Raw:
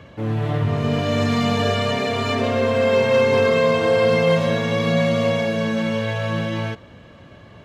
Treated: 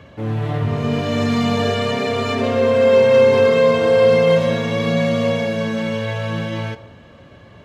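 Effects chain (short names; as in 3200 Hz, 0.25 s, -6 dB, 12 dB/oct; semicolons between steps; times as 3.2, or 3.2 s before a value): on a send: bell 500 Hz +10 dB + reverb RT60 1.1 s, pre-delay 6 ms, DRR 11.5 dB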